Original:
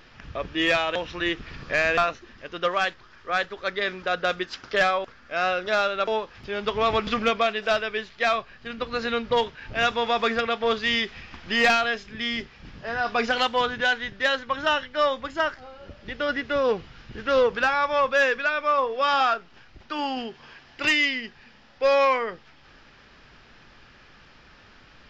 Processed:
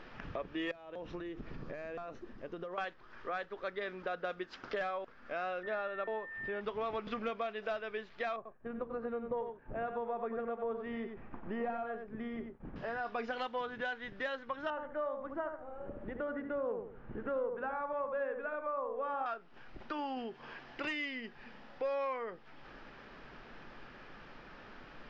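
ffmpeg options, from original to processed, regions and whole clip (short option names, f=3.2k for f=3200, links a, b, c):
-filter_complex "[0:a]asettb=1/sr,asplit=3[a][b][c];[a]atrim=end=0.714[d];[b]atrim=start=0.71:end=2.78,asetpts=PTS-STARTPTS,afade=t=in:d=0.004:c=qsin,afade=t=out:st=2.066:d=0.004:c=qsin,acompressor=threshold=-32dB:ratio=8:attack=3.2:release=140:knee=1:detection=peak,equalizer=f=2.4k:w=0.34:g=-10.5[e];[c]atrim=start=2.776[f];[d][e]acrossfade=d=0.004:c1=hsin:c2=qsin[g];[g][f]acrossfade=d=0.004:c1=qsin:c2=hsin,asettb=1/sr,asplit=3[h][i][j];[h]atrim=end=5.634[k];[i]atrim=start=5.63:end=6.61,asetpts=PTS-STARTPTS,afade=t=in:d=0.004:c=qsin,afade=t=out:st=0.976:d=0.004:c=qsin,lowpass=2.9k,aeval=exprs='val(0)+0.0282*sin(2*PI*1800*n/s)':c=same[l];[j]atrim=start=6.606[m];[k][l]acrossfade=d=0.004:c1=hsin:c2=qsin[n];[n][m]acrossfade=d=0.004:c1=qsin:c2=hsin,asettb=1/sr,asplit=3[o][p][q];[o]atrim=end=8.364[r];[p]atrim=start=8.36:end=12.76,asetpts=PTS-STARTPTS,afade=t=in:d=0.004:c=qsin,afade=t=out:st=4.396:d=0.004:c=qsin,lowpass=1k,agate=range=-33dB:threshold=-44dB:ratio=3:release=100:detection=peak,aecho=1:1:91:0.376,atrim=end_sample=194040[s];[q]atrim=start=12.756[t];[r][s]acrossfade=d=0.004:c1=hsin:c2=qsin[u];[u][t]acrossfade=d=0.004:c1=qsin:c2=hsin,asettb=1/sr,asplit=3[v][w][x];[v]atrim=end=14.704[y];[w]atrim=start=14.7:end=19.26,asetpts=PTS-STARTPTS,afade=t=in:d=0.004:c=qsin,afade=t=out:st=4.556:d=0.004:c=qsin,lowpass=1.3k,asplit=2[z][aa];[aa]adelay=73,lowpass=f=1k:p=1,volume=-4.5dB,asplit=2[ab][ac];[ac]adelay=73,lowpass=f=1k:p=1,volume=0.32,asplit=2[ad][ae];[ae]adelay=73,lowpass=f=1k:p=1,volume=0.32,asplit=2[af][ag];[ag]adelay=73,lowpass=f=1k:p=1,volume=0.32[ah];[z][ab][ad][af][ah]amix=inputs=5:normalize=0,atrim=end_sample=201096[ai];[x]atrim=start=19.256[aj];[y][ai]acrossfade=d=0.004:c1=hsin:c2=qsin[ak];[ak][aj]acrossfade=d=0.004:c1=qsin:c2=hsin,lowpass=f=1k:p=1,equalizer=f=69:t=o:w=2:g=-13,acompressor=threshold=-45dB:ratio=3,volume=4.5dB"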